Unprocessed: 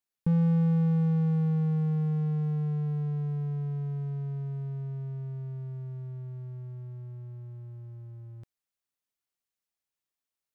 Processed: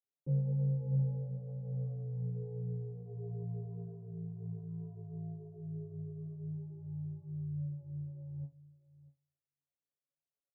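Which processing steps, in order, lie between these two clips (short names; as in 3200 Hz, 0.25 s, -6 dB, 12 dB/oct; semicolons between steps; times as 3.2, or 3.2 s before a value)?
HPF 60 Hz 24 dB/oct; bell 460 Hz -3.5 dB 1.9 oct; in parallel at +2 dB: compressor, threshold -34 dBFS, peak gain reduction 10.5 dB; on the sum: ring modulator 28 Hz; soft clip -24.5 dBFS, distortion -14 dB; chorus voices 2, 1 Hz, delay 16 ms, depth 3 ms; ladder low-pass 610 Hz, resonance 50%; resonator 140 Hz, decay 0.22 s, harmonics all, mix 100%; outdoor echo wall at 110 m, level -19 dB; on a send at -10 dB: reverb, pre-delay 3 ms; on the sum: gain +13 dB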